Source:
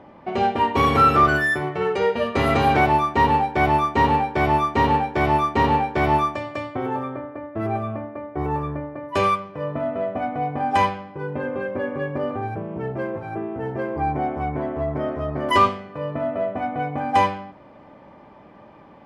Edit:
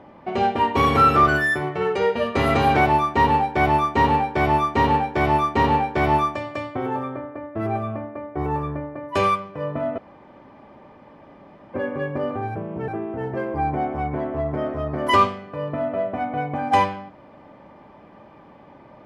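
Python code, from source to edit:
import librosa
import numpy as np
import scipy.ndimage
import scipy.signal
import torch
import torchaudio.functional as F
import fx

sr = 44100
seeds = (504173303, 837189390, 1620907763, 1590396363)

y = fx.edit(x, sr, fx.room_tone_fill(start_s=9.98, length_s=1.76),
    fx.cut(start_s=12.88, length_s=0.42), tone=tone)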